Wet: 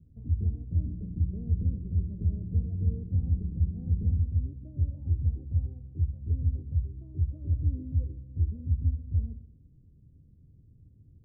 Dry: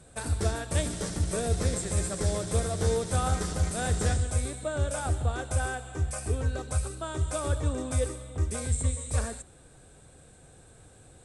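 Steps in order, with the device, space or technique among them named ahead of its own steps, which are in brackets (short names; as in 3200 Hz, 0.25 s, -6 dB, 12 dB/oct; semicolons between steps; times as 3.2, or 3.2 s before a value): the neighbour's flat through the wall (LPF 260 Hz 24 dB/oct; bell 92 Hz +5 dB 0.88 oct); multi-head echo 67 ms, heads first and second, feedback 47%, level -20 dB; gain -2.5 dB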